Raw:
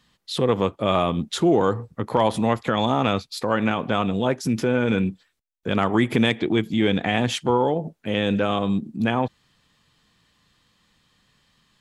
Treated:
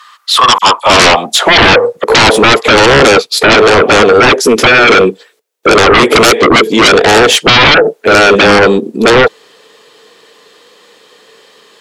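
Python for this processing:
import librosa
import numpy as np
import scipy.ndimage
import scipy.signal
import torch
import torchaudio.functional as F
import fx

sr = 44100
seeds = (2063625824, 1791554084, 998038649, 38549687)

y = fx.filter_sweep_highpass(x, sr, from_hz=1200.0, to_hz=440.0, start_s=0.28, end_s=2.13, q=7.4)
y = fx.dispersion(y, sr, late='lows', ms=47.0, hz=2900.0, at=(0.58, 2.04))
y = fx.fold_sine(y, sr, drive_db=19, ceiling_db=0.5)
y = y * librosa.db_to_amplitude(-2.0)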